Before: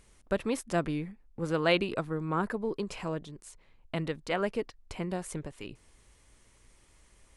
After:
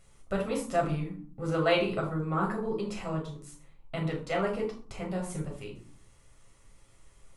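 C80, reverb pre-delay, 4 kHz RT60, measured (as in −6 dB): 11.0 dB, 7 ms, 0.30 s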